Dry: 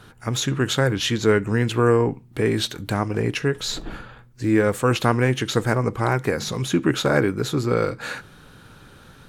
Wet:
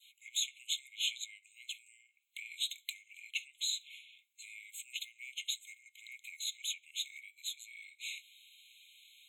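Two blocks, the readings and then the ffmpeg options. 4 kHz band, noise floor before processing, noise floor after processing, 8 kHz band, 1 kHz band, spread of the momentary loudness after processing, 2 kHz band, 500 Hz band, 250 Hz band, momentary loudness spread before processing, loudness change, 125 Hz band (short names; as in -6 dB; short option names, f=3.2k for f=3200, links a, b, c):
-8.0 dB, -49 dBFS, -74 dBFS, -8.0 dB, under -40 dB, 18 LU, -18.5 dB, under -40 dB, under -40 dB, 8 LU, -17.5 dB, under -40 dB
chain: -af "adynamicequalizer=threshold=0.0141:dfrequency=2300:dqfactor=1.3:tfrequency=2300:tqfactor=1.3:attack=5:release=100:ratio=0.375:range=1.5:mode=cutabove:tftype=bell,acompressor=threshold=-25dB:ratio=6,afftfilt=real='re*eq(mod(floor(b*sr/1024/2100),2),1)':imag='im*eq(mod(floor(b*sr/1024/2100),2),1)':win_size=1024:overlap=0.75,volume=-2.5dB"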